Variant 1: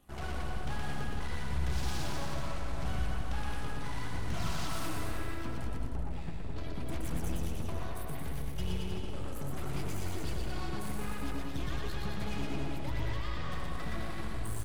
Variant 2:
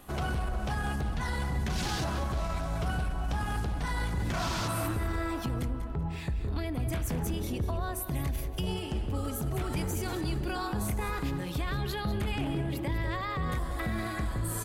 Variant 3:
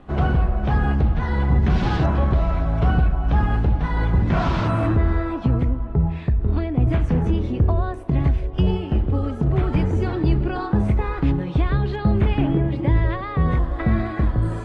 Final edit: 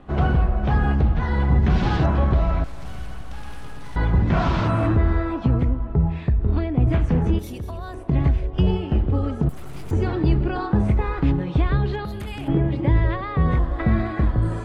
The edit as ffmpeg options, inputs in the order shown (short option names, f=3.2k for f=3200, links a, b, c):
-filter_complex "[0:a]asplit=2[a][b];[1:a]asplit=2[c][d];[2:a]asplit=5[e][f][g][h][i];[e]atrim=end=2.642[j];[a]atrim=start=2.638:end=3.962[k];[f]atrim=start=3.958:end=7.392[l];[c]atrim=start=7.388:end=7.942[m];[g]atrim=start=7.938:end=9.492[n];[b]atrim=start=9.488:end=9.912[o];[h]atrim=start=9.908:end=12.052[p];[d]atrim=start=12.048:end=12.482[q];[i]atrim=start=12.478[r];[j][k]acrossfade=d=0.004:c1=hsin:c2=hsin[s];[s][l]acrossfade=d=0.004:c1=hsin:c2=hsin[t];[t][m]acrossfade=d=0.004:c1=hsin:c2=hsin[u];[u][n]acrossfade=d=0.004:c1=hsin:c2=hsin[v];[v][o]acrossfade=d=0.004:c1=hsin:c2=hsin[w];[w][p]acrossfade=d=0.004:c1=hsin:c2=hsin[x];[x][q]acrossfade=d=0.004:c1=hsin:c2=hsin[y];[y][r]acrossfade=d=0.004:c1=hsin:c2=hsin"